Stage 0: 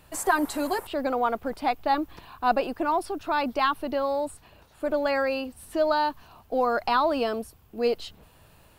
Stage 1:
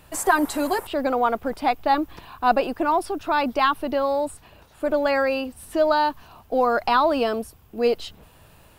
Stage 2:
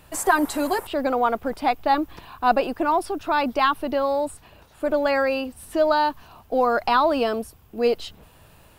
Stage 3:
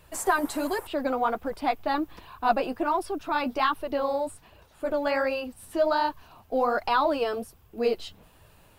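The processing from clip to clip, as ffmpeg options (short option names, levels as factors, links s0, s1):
-af "bandreject=f=4300:w=26,volume=1.58"
-af anull
-af "flanger=delay=1.8:depth=9.8:regen=-30:speed=1.3:shape=sinusoidal,volume=0.891"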